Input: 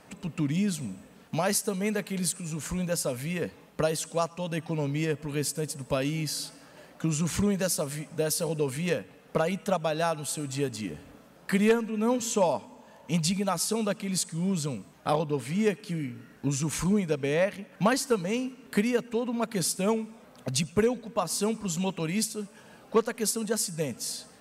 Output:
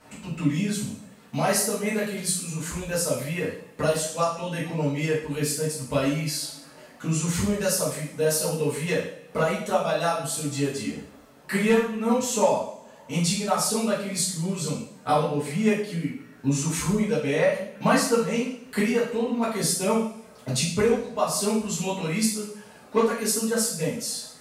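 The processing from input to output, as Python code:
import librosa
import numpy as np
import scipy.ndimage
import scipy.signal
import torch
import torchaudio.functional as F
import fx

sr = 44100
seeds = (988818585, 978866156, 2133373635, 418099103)

y = fx.dereverb_blind(x, sr, rt60_s=0.67)
y = fx.rev_double_slope(y, sr, seeds[0], early_s=0.57, late_s=1.7, knee_db=-21, drr_db=-9.5)
y = y * librosa.db_to_amplitude(-5.0)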